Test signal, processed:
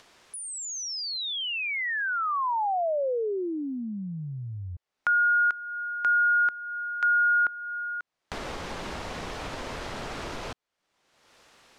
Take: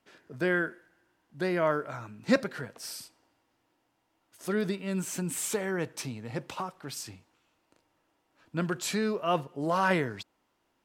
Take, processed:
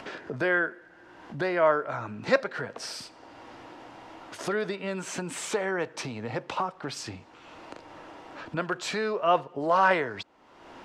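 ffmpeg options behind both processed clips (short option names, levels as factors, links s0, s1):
-filter_complex "[0:a]acrossover=split=430[s0][s1];[s0]acompressor=threshold=0.01:ratio=6[s2];[s1]lowpass=5600[s3];[s2][s3]amix=inputs=2:normalize=0,acompressor=mode=upward:threshold=0.0282:ratio=2.5,equalizer=f=720:w=0.4:g=6.5"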